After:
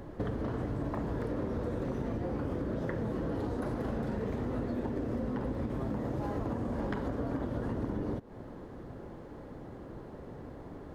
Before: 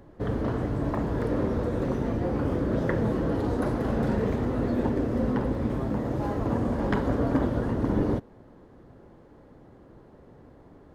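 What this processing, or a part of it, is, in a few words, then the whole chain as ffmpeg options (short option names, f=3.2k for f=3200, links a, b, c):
serial compression, peaks first: -af "acompressor=threshold=-33dB:ratio=6,acompressor=threshold=-40dB:ratio=2,volume=6dB"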